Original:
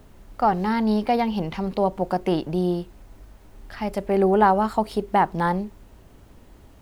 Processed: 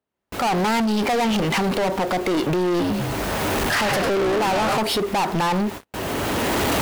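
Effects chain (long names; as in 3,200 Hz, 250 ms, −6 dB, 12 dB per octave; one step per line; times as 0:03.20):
camcorder AGC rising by 22 dB per second
hard clipping −17.5 dBFS, distortion −12 dB
bass and treble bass −8 dB, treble −12 dB
0:02.69–0:04.78: echo with shifted repeats 101 ms, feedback 62%, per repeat −72 Hz, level −8.5 dB
noise gate with hold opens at −35 dBFS
high-shelf EQ 3,200 Hz +11.5 dB
brickwall limiter −20 dBFS, peak gain reduction 9.5 dB
high-pass filter 100 Hz 12 dB per octave
leveller curve on the samples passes 5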